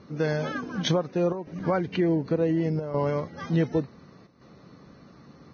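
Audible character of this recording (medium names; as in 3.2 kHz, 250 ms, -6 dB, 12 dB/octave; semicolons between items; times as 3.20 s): chopped level 0.68 Hz, depth 65%, duty 90%; Vorbis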